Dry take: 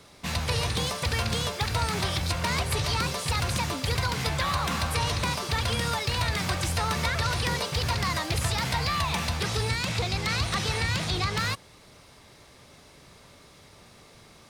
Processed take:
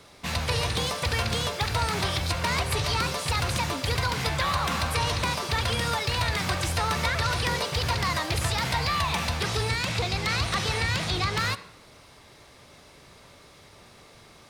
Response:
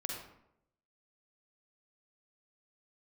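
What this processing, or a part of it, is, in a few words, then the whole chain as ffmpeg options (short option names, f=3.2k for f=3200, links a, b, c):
filtered reverb send: -filter_complex "[0:a]asplit=2[a][b];[b]highpass=f=170:w=0.5412,highpass=f=170:w=1.3066,lowpass=5.3k[c];[1:a]atrim=start_sample=2205[d];[c][d]afir=irnorm=-1:irlink=0,volume=-11dB[e];[a][e]amix=inputs=2:normalize=0"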